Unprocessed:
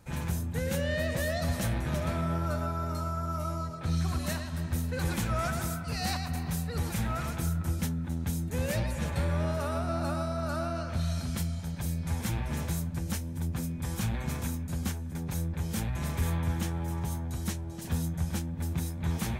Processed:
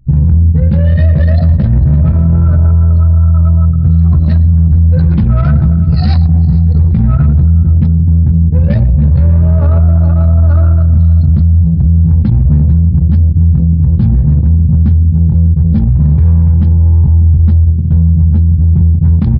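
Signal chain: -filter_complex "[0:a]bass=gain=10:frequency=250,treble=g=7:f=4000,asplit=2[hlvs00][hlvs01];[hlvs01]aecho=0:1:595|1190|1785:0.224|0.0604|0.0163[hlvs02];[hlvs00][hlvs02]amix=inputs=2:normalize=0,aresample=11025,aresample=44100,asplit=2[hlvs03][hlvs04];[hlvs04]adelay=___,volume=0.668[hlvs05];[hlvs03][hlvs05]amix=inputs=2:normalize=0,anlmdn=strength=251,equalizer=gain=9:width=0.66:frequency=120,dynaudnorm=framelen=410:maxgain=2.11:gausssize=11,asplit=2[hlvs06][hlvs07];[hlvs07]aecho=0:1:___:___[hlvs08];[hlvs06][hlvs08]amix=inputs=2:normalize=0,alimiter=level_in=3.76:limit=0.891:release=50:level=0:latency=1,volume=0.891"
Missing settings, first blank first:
14, 450, 0.075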